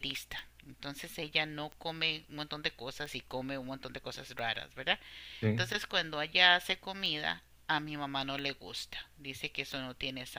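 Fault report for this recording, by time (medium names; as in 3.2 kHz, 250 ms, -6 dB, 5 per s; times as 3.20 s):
tick 45 rpm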